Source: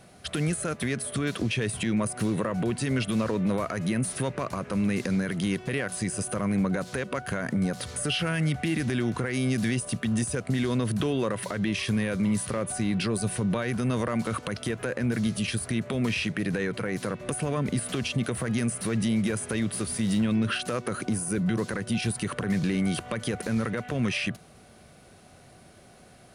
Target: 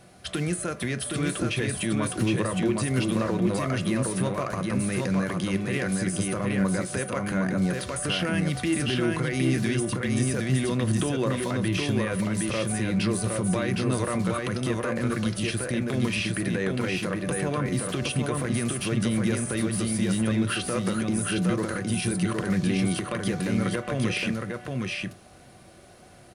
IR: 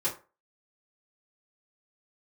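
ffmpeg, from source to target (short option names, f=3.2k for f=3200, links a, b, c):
-filter_complex "[0:a]aecho=1:1:764:0.708,asplit=2[a][b];[1:a]atrim=start_sample=2205[c];[b][c]afir=irnorm=-1:irlink=0,volume=-14.5dB[d];[a][d]amix=inputs=2:normalize=0,volume=-1.5dB"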